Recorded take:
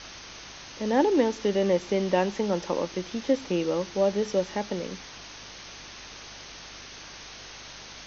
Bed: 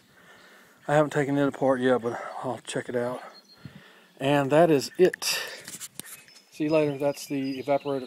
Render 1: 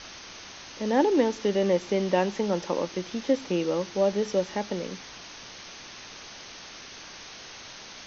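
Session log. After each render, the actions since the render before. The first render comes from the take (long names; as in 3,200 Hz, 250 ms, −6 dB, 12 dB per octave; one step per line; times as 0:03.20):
hum removal 50 Hz, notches 3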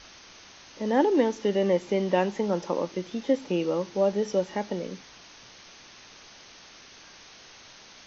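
noise reduction from a noise print 6 dB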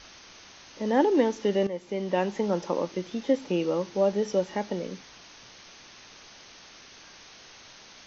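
0:01.67–0:02.39: fade in, from −13 dB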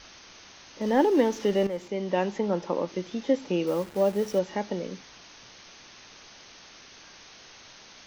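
0:00.81–0:01.88: mu-law and A-law mismatch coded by mu
0:02.38–0:02.88: high-frequency loss of the air 89 metres
0:03.67–0:04.39: hold until the input has moved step −40.5 dBFS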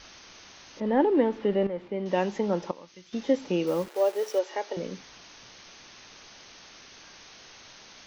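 0:00.80–0:02.06: high-frequency loss of the air 350 metres
0:02.71–0:03.13: guitar amp tone stack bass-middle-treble 5-5-5
0:03.88–0:04.77: inverse Chebyshev high-pass filter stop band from 180 Hz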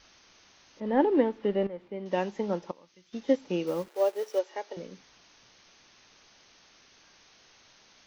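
expander for the loud parts 1.5 to 1, over −37 dBFS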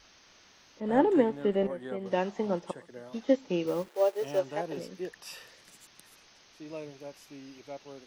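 mix in bed −18 dB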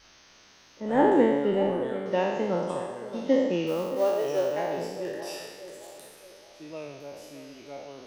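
peak hold with a decay on every bin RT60 1.26 s
feedback echo with a band-pass in the loop 621 ms, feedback 42%, band-pass 620 Hz, level −11 dB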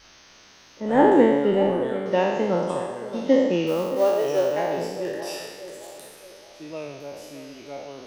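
level +4.5 dB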